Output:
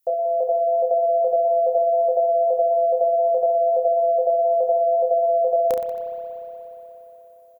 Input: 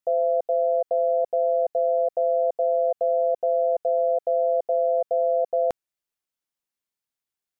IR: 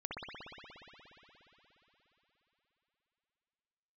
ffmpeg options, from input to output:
-filter_complex "[0:a]aemphasis=mode=production:type=50fm,aecho=1:1:30|69|119.7|185.6|271.3:0.631|0.398|0.251|0.158|0.1,asplit=2[s0][s1];[1:a]atrim=start_sample=2205[s2];[s1][s2]afir=irnorm=-1:irlink=0,volume=0.422[s3];[s0][s3]amix=inputs=2:normalize=0"

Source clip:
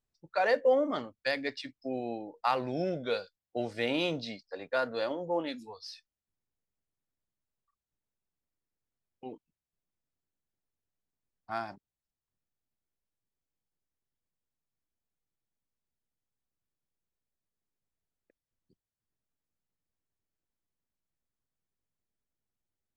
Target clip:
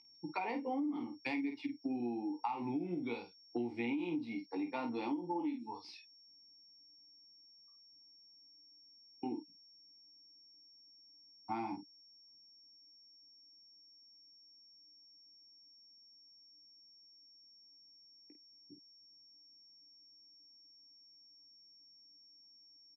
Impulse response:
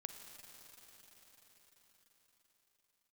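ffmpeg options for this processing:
-filter_complex "[0:a]acrossover=split=210|3000[s0][s1][s2];[s0]acontrast=74[s3];[s2]aeval=exprs='clip(val(0),-1,0.0112)':c=same[s4];[s3][s1][s4]amix=inputs=3:normalize=0,aeval=exprs='val(0)+0.00398*sin(2*PI*5500*n/s)':c=same,asplit=3[s5][s6][s7];[s5]bandpass=f=300:t=q:w=8,volume=1[s8];[s6]bandpass=f=870:t=q:w=8,volume=0.501[s9];[s7]bandpass=f=2240:t=q:w=8,volume=0.355[s10];[s8][s9][s10]amix=inputs=3:normalize=0,aecho=1:1:17|50:0.501|0.398,alimiter=level_in=2.24:limit=0.0631:level=0:latency=1:release=163,volume=0.447,acompressor=threshold=0.00224:ratio=6,volume=7.08"

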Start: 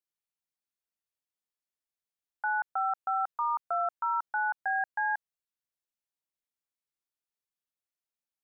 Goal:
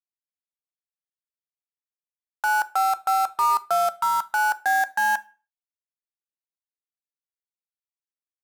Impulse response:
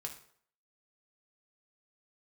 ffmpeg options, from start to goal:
-filter_complex "[0:a]acrusher=bits=5:mix=0:aa=0.5,asplit=2[s0][s1];[1:a]atrim=start_sample=2205,asetrate=70560,aresample=44100[s2];[s1][s2]afir=irnorm=-1:irlink=0,volume=1[s3];[s0][s3]amix=inputs=2:normalize=0,volume=1.88"

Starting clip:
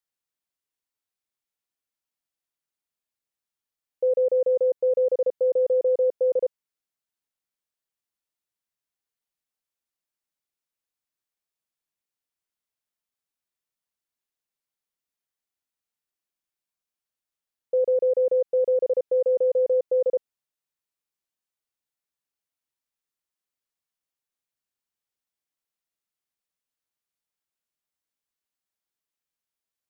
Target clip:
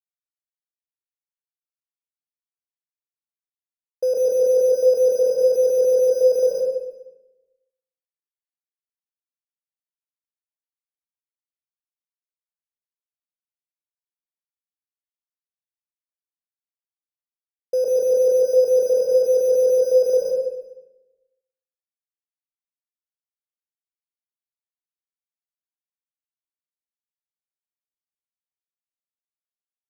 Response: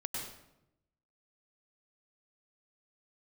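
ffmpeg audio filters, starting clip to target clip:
-filter_complex "[0:a]asplit=2[s0][s1];[s1]acrusher=samples=8:mix=1:aa=0.000001,volume=0.501[s2];[s0][s2]amix=inputs=2:normalize=0,aeval=exprs='sgn(val(0))*max(abs(val(0))-0.00251,0)':c=same,aecho=1:1:122|244|366|488:0.158|0.0634|0.0254|0.0101[s3];[1:a]atrim=start_sample=2205,asetrate=37485,aresample=44100[s4];[s3][s4]afir=irnorm=-1:irlink=0"

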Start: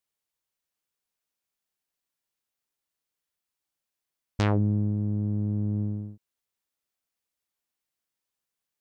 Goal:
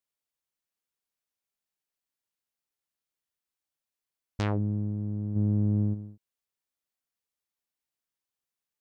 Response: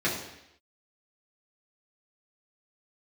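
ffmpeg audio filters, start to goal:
-filter_complex "[0:a]asplit=3[s0][s1][s2];[s0]afade=t=out:st=5.35:d=0.02[s3];[s1]acontrast=84,afade=t=in:st=5.35:d=0.02,afade=t=out:st=5.93:d=0.02[s4];[s2]afade=t=in:st=5.93:d=0.02[s5];[s3][s4][s5]amix=inputs=3:normalize=0,volume=0.596"

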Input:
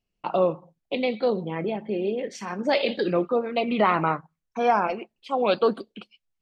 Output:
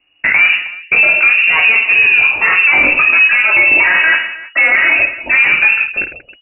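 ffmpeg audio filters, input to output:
-filter_complex "[0:a]asettb=1/sr,asplit=3[s0][s1][s2];[s0]atrim=end=2.794[s3];[s1]atrim=start=2.79:end=5.36,asetpts=PTS-STARTPTS,afade=t=in:d=0.004:c=qsin,afade=t=out:st=2.566:d=0.004:c=qsin,aecho=1:1:3.1:0.75,atrim=end_sample=113337[s4];[s2]atrim=start=5.356[s5];[s3][s4]acrossfade=d=0.004:c1=hsin:c2=qsin[s6];[s6][s5]acrossfade=d=0.004:c1=qsin:c2=hsin,acompressor=threshold=0.0631:ratio=6,asoftclip=type=tanh:threshold=0.0422,aecho=1:1:20|52|103.2|185.1|316.2:0.631|0.398|0.251|0.158|0.1,lowpass=f=2500:t=q:w=0.5098,lowpass=f=2500:t=q:w=0.6013,lowpass=f=2500:t=q:w=0.9,lowpass=f=2500:t=q:w=2.563,afreqshift=-2900,alimiter=level_in=15.8:limit=0.891:release=50:level=0:latency=1,volume=0.891"

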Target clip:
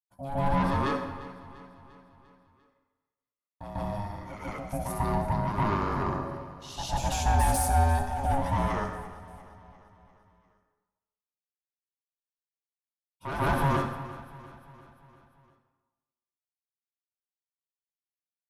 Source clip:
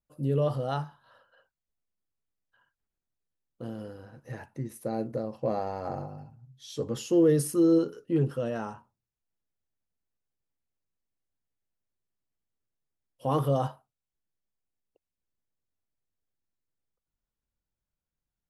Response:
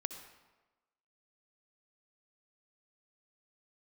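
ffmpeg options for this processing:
-filter_complex "[0:a]highpass=200,agate=range=0.0224:threshold=0.002:ratio=3:detection=peak,acrossover=split=410|3800[s0][s1][s2];[s0]alimiter=level_in=1.58:limit=0.0631:level=0:latency=1,volume=0.631[s3];[s3][s1][s2]amix=inputs=3:normalize=0,asoftclip=type=tanh:threshold=0.0355,aeval=exprs='val(0)*sin(2*PI*410*n/s)':c=same,aecho=1:1:347|694|1041|1388|1735:0.141|0.0791|0.0443|0.0248|0.0139,asplit=2[s4][s5];[1:a]atrim=start_sample=2205,lowshelf=f=190:g=4,adelay=146[s6];[s5][s6]afir=irnorm=-1:irlink=0,volume=2.37[s7];[s4][s7]amix=inputs=2:normalize=0,volume=1.33"

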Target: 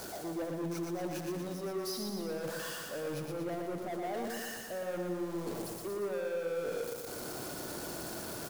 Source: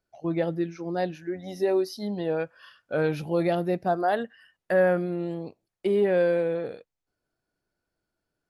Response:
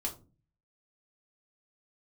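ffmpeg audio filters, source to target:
-af "aeval=exprs='val(0)+0.5*0.02*sgn(val(0))':c=same,highpass=f=270:p=1,equalizer=f=2200:w=0.69:g=-11,areverse,acompressor=threshold=0.0178:ratio=6,areverse,asoftclip=type=tanh:threshold=0.0112,aecho=1:1:118|236|354|472|590|708|826|944:0.631|0.366|0.212|0.123|0.0714|0.0414|0.024|0.0139,volume=1.5"

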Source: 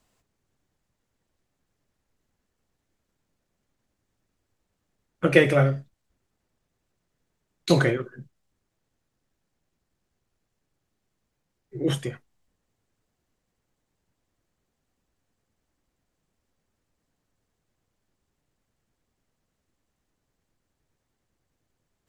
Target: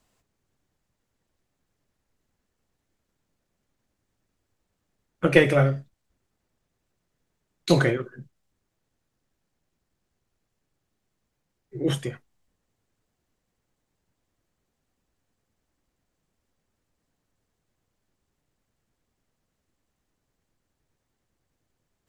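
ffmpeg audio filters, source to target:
-af "aeval=exprs='0.708*(cos(1*acos(clip(val(0)/0.708,-1,1)))-cos(1*PI/2))+0.0631*(cos(2*acos(clip(val(0)/0.708,-1,1)))-cos(2*PI/2))':c=same"

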